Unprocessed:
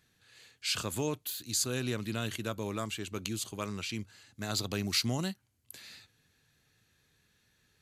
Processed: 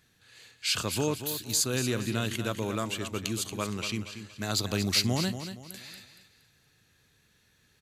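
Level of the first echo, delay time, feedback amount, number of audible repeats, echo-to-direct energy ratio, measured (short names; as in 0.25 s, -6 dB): -10.0 dB, 0.234 s, 35%, 3, -9.5 dB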